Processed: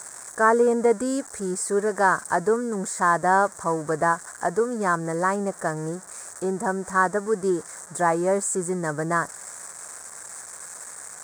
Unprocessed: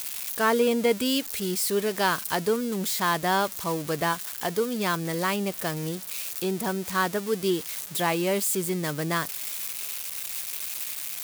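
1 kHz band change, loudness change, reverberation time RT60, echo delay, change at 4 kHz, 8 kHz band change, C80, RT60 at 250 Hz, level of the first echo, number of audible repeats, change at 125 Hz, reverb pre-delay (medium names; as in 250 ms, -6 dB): +5.5 dB, +3.0 dB, no reverb, no echo, -15.0 dB, +0.5 dB, no reverb, no reverb, no echo, no echo, 0.0 dB, no reverb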